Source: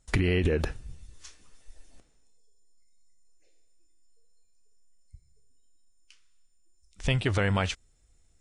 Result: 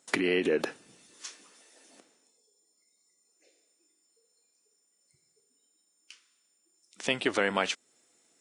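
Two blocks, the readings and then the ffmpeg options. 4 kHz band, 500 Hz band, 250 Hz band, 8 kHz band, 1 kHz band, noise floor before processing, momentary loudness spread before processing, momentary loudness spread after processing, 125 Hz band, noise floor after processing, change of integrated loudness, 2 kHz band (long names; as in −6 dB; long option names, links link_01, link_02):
+1.5 dB, +1.5 dB, −1.5 dB, +3.0 dB, +1.5 dB, −64 dBFS, 12 LU, 18 LU, −18.5 dB, −73 dBFS, −2.0 dB, +1.5 dB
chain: -filter_complex "[0:a]asplit=2[link_01][link_02];[link_02]acompressor=threshold=-39dB:ratio=6,volume=1dB[link_03];[link_01][link_03]amix=inputs=2:normalize=0,highpass=frequency=240:width=0.5412,highpass=frequency=240:width=1.3066"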